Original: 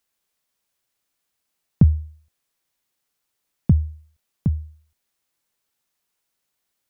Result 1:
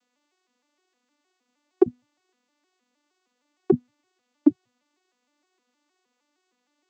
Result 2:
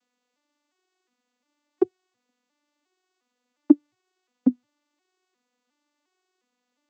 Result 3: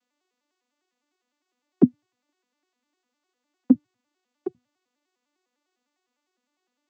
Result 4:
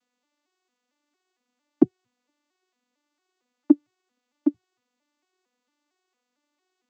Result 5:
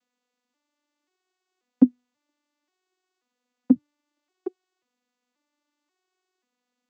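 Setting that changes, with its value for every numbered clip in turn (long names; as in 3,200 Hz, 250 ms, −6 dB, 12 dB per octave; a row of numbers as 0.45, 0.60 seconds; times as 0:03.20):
vocoder with an arpeggio as carrier, a note every: 155, 356, 101, 227, 535 milliseconds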